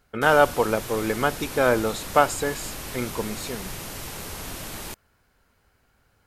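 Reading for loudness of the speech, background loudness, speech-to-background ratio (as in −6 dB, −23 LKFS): −23.5 LKFS, −34.5 LKFS, 11.0 dB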